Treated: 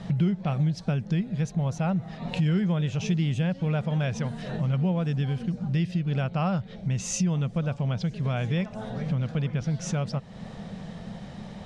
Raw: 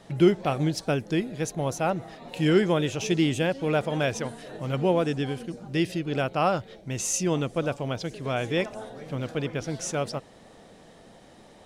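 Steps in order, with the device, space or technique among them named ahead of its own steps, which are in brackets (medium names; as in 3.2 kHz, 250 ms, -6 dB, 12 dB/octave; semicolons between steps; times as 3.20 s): jukebox (low-pass 5.5 kHz 12 dB/octave; resonant low shelf 240 Hz +7.5 dB, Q 3; compression 3:1, threshold -35 dBFS, peak gain reduction 19 dB); trim +7 dB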